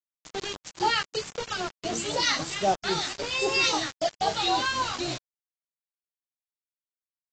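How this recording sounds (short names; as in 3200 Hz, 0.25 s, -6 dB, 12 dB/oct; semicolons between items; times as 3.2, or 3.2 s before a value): phasing stages 2, 3.8 Hz, lowest notch 570–2100 Hz; a quantiser's noise floor 6-bit, dither none; AAC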